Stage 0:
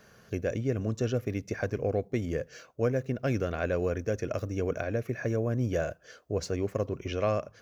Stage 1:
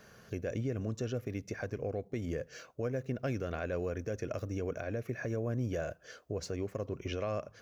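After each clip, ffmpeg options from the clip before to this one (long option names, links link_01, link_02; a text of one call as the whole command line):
ffmpeg -i in.wav -af "alimiter=level_in=1.5dB:limit=-24dB:level=0:latency=1:release=243,volume=-1.5dB" out.wav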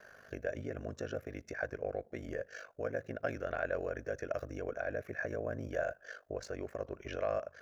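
ffmpeg -i in.wav -af "aeval=exprs='val(0)*sin(2*PI*25*n/s)':channel_layout=same,equalizer=frequency=160:width_type=o:width=0.67:gain=-7,equalizer=frequency=630:width_type=o:width=0.67:gain=10,equalizer=frequency=1600:width_type=o:width=0.67:gain=12,volume=-3.5dB" out.wav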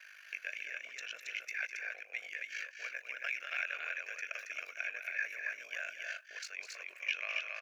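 ffmpeg -i in.wav -filter_complex "[0:a]highpass=frequency=2400:width_type=q:width=6,asplit=2[link_01][link_02];[link_02]aecho=0:1:204.1|274.1:0.316|0.708[link_03];[link_01][link_03]amix=inputs=2:normalize=0,volume=3dB" out.wav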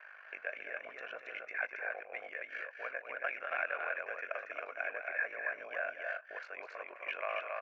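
ffmpeg -i in.wav -af "lowpass=frequency=930:width_type=q:width=1.9,volume=10dB" out.wav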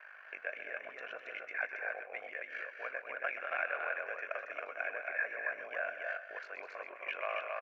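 ffmpeg -i in.wav -af "aecho=1:1:129:0.237" out.wav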